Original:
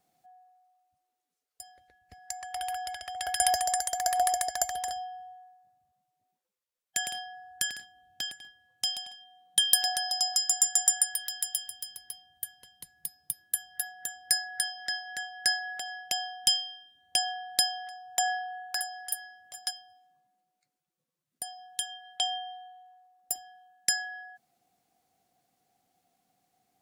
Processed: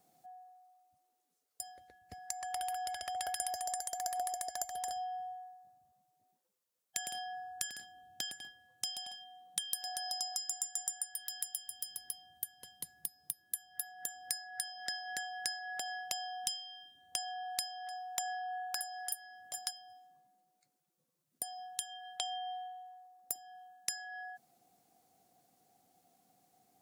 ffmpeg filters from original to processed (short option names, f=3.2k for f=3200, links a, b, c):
-filter_complex "[0:a]asplit=3[a][b][c];[a]afade=t=out:st=17.43:d=0.02[d];[b]highpass=380,afade=t=in:st=17.43:d=0.02,afade=t=out:st=19.06:d=0.02[e];[c]afade=t=in:st=19.06:d=0.02[f];[d][e][f]amix=inputs=3:normalize=0,highpass=f=120:p=1,equalizer=f=2.3k:t=o:w=2.3:g=-6.5,acompressor=threshold=-42dB:ratio=5,volume=5.5dB"